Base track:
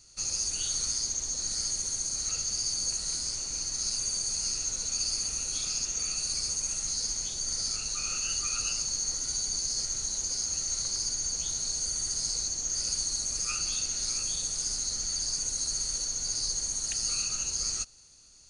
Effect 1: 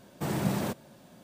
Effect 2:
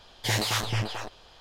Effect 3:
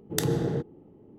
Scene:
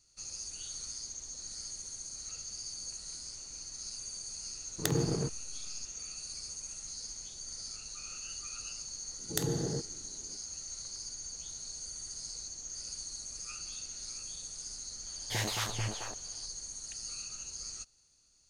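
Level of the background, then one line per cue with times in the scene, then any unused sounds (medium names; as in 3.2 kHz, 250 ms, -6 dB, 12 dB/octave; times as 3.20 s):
base track -11.5 dB
4.67 s: add 3 -3.5 dB + hysteresis with a dead band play -27.5 dBFS
9.19 s: add 3 -7.5 dB + tone controls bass +1 dB, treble +4 dB
15.06 s: add 2 -7.5 dB
not used: 1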